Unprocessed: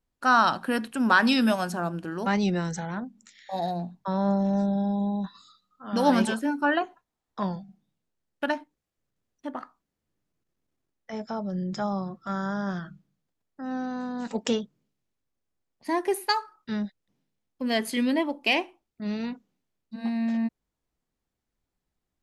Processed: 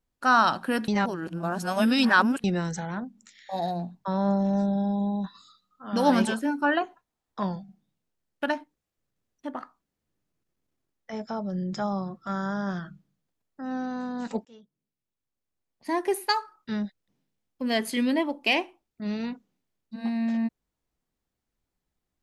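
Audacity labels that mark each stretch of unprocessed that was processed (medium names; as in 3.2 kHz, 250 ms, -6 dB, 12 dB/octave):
0.880000	2.440000	reverse
14.450000	16.070000	fade in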